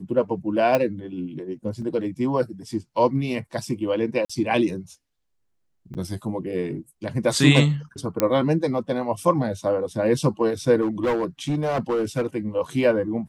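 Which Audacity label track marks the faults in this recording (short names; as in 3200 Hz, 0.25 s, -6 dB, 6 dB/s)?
0.750000	0.750000	pop -8 dBFS
1.820000	1.820000	gap 4.2 ms
4.250000	4.290000	gap 45 ms
5.940000	5.950000	gap 8.8 ms
8.200000	8.200000	pop -5 dBFS
10.810000	12.260000	clipped -18.5 dBFS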